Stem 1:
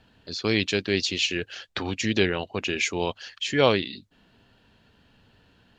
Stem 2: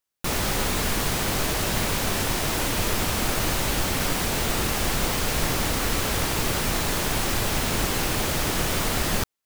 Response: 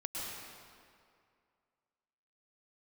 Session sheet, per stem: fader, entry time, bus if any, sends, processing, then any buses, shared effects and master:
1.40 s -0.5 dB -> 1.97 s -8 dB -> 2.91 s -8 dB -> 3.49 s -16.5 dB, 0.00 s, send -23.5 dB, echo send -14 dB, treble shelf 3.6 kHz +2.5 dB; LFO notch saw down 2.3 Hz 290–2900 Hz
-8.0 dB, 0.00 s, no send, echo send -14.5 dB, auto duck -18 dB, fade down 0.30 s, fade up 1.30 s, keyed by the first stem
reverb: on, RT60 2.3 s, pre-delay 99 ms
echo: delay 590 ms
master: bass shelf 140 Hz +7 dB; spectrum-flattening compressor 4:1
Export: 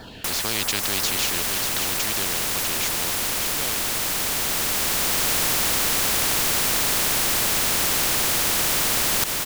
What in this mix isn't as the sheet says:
stem 2 -8.0 dB -> +0.5 dB; master: missing bass shelf 140 Hz +7 dB

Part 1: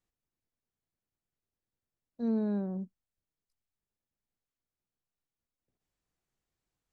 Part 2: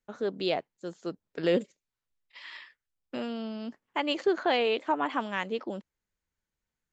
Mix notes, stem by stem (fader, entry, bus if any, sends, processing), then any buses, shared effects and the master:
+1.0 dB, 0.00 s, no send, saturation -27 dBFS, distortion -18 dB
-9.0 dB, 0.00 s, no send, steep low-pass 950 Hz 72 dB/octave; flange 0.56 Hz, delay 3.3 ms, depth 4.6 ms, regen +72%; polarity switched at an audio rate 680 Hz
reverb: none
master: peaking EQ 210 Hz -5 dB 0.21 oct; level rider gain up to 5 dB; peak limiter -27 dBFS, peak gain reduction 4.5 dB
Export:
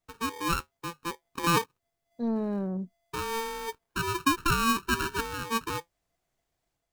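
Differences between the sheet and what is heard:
stem 2 -9.0 dB -> +1.0 dB; master: missing peak limiter -27 dBFS, peak gain reduction 4.5 dB

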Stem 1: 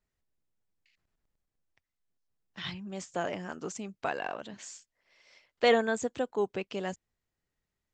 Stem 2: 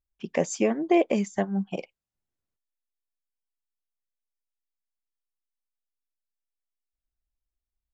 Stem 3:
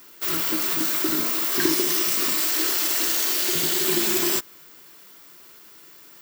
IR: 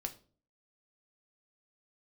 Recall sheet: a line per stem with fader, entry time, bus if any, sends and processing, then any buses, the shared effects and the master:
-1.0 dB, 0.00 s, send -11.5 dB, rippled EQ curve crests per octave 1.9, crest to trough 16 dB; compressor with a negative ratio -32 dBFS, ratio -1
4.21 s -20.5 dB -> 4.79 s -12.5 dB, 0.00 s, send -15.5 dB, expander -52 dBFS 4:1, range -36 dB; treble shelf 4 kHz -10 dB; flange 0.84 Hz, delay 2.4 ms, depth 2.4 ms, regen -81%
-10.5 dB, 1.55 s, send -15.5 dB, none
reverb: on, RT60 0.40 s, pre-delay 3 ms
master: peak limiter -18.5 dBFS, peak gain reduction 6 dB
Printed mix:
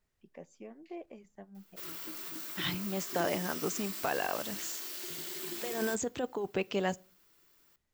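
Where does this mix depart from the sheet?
stem 1: missing rippled EQ curve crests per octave 1.9, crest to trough 16 dB; stem 3 -10.5 dB -> -19.5 dB

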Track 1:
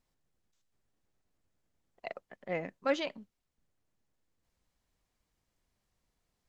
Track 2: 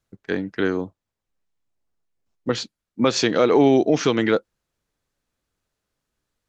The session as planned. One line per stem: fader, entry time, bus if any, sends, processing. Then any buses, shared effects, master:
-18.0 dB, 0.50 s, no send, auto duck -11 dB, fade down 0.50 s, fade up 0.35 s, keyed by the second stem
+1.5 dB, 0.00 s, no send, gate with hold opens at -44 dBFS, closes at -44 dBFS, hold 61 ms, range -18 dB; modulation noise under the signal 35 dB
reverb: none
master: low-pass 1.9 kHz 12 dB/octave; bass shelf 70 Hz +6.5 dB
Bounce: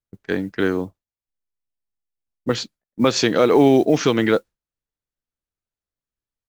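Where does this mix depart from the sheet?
stem 1 -18.0 dB -> -26.0 dB; master: missing low-pass 1.9 kHz 12 dB/octave

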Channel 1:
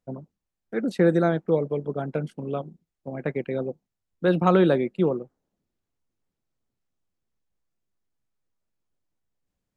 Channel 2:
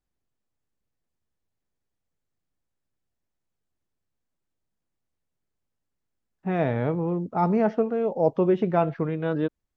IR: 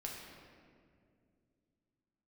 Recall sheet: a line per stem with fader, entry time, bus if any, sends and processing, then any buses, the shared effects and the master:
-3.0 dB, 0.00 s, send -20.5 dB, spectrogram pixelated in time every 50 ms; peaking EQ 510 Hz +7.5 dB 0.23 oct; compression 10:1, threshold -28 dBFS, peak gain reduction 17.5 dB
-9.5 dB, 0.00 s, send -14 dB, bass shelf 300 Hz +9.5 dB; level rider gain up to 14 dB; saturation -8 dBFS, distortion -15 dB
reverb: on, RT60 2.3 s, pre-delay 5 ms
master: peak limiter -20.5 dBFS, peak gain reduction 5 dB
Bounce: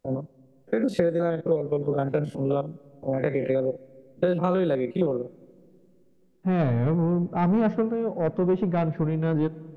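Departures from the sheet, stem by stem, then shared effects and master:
stem 1 -3.0 dB -> +7.5 dB; master: missing peak limiter -20.5 dBFS, peak gain reduction 5 dB

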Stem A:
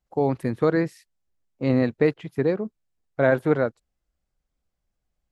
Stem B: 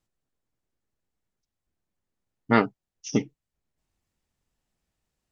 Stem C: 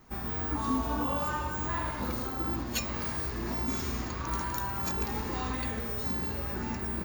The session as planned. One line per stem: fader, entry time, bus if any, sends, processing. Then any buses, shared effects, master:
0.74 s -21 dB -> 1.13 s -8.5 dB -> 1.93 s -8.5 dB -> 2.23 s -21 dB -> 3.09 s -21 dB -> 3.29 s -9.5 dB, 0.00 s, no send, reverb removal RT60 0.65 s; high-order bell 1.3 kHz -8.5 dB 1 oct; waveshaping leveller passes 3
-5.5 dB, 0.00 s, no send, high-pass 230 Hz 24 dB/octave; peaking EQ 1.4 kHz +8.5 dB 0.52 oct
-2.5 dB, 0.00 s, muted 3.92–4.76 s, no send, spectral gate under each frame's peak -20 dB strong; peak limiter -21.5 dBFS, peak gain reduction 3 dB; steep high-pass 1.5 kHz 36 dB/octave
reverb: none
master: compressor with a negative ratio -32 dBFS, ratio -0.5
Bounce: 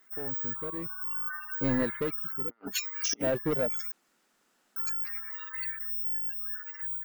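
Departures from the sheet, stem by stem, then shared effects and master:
stem A -21.0 dB -> -32.0 dB; stem B -5.5 dB -> +6.0 dB

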